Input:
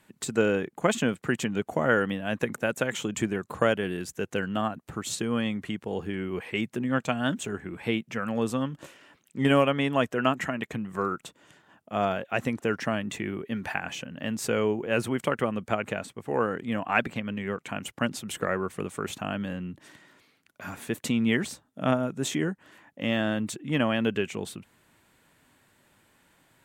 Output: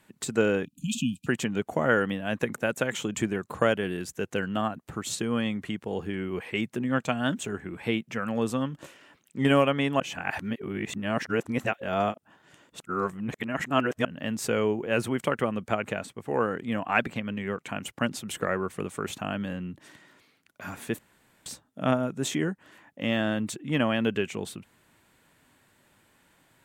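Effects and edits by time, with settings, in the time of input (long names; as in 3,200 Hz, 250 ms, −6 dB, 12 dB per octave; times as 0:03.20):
0:00.65–0:01.27: time-frequency box erased 300–2,400 Hz
0:10.00–0:14.05: reverse
0:20.99–0:21.46: fill with room tone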